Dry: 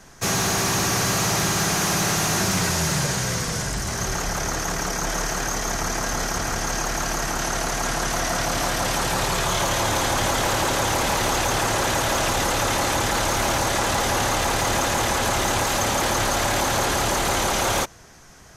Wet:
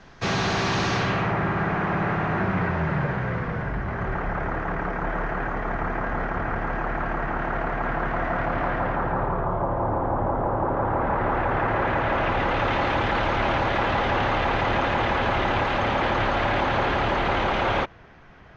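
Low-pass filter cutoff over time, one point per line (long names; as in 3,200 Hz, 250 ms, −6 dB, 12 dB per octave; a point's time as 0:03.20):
low-pass filter 24 dB per octave
0:00.93 4,200 Hz
0:01.35 2,000 Hz
0:08.72 2,000 Hz
0:09.59 1,100 Hz
0:10.57 1,100 Hz
0:11.34 1,800 Hz
0:12.76 3,000 Hz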